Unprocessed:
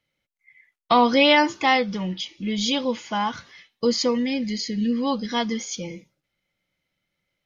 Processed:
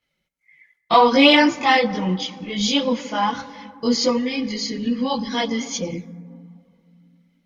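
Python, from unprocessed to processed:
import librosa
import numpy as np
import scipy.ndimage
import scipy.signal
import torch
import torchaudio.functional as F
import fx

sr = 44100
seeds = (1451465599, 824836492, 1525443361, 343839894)

y = fx.rev_fdn(x, sr, rt60_s=2.4, lf_ratio=1.45, hf_ratio=0.3, size_ms=35.0, drr_db=14.0)
y = fx.cheby_harmonics(y, sr, harmonics=(7,), levels_db=(-42,), full_scale_db=-6.0)
y = fx.chorus_voices(y, sr, voices=4, hz=0.65, base_ms=21, depth_ms=3.8, mix_pct=65)
y = F.gain(torch.from_numpy(y), 6.0).numpy()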